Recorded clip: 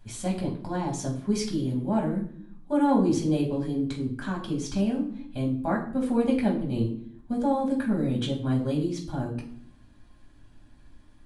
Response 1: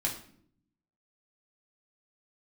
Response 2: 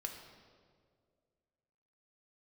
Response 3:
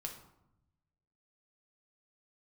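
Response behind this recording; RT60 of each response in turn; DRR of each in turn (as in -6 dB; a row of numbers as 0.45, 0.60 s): 1; 0.65, 2.0, 0.85 s; -2.5, 2.5, 2.0 dB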